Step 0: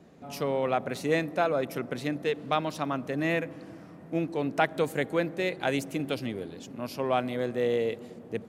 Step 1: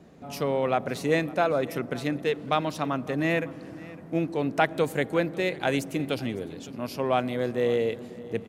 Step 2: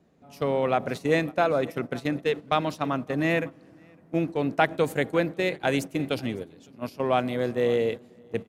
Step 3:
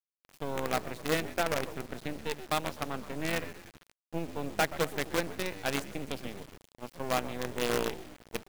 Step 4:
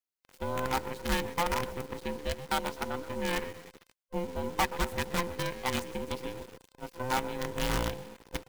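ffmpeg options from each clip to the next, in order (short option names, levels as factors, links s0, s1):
-af "lowshelf=f=79:g=5.5,aecho=1:1:556:0.1,volume=1.26"
-af "agate=range=0.251:threshold=0.0282:ratio=16:detection=peak,volume=1.12"
-filter_complex "[0:a]asplit=6[s0][s1][s2][s3][s4][s5];[s1]adelay=126,afreqshift=-77,volume=0.299[s6];[s2]adelay=252,afreqshift=-154,volume=0.138[s7];[s3]adelay=378,afreqshift=-231,volume=0.0631[s8];[s4]adelay=504,afreqshift=-308,volume=0.0292[s9];[s5]adelay=630,afreqshift=-385,volume=0.0133[s10];[s0][s6][s7][s8][s9][s10]amix=inputs=6:normalize=0,acrusher=bits=4:dc=4:mix=0:aa=0.000001,volume=0.447"
-af "afftfilt=real='real(if(between(b,1,1008),(2*floor((b-1)/24)+1)*24-b,b),0)':imag='imag(if(between(b,1,1008),(2*floor((b-1)/24)+1)*24-b,b),0)*if(between(b,1,1008),-1,1)':win_size=2048:overlap=0.75"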